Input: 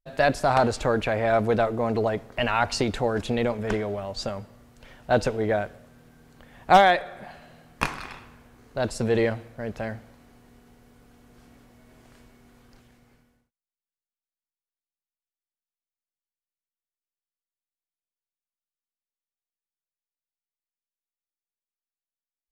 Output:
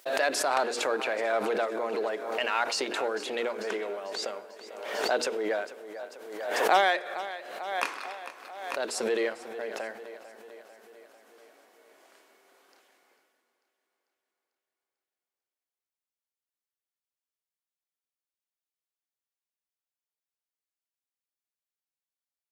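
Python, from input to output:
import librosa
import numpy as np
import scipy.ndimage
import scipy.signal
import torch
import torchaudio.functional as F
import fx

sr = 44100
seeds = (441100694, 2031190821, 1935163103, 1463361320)

p1 = fx.hum_notches(x, sr, base_hz=60, count=8)
p2 = p1 + fx.echo_feedback(p1, sr, ms=445, feedback_pct=59, wet_db=-15.5, dry=0)
p3 = fx.dynamic_eq(p2, sr, hz=700.0, q=1.5, threshold_db=-35.0, ratio=4.0, max_db=-5)
p4 = np.clip(10.0 ** (23.5 / 20.0) * p3, -1.0, 1.0) / 10.0 ** (23.5 / 20.0)
p5 = p3 + (p4 * 10.0 ** (-8.5 / 20.0))
p6 = scipy.signal.sosfilt(scipy.signal.butter(4, 350.0, 'highpass', fs=sr, output='sos'), p5)
p7 = fx.pre_swell(p6, sr, db_per_s=49.0)
y = p7 * 10.0 ** (-4.5 / 20.0)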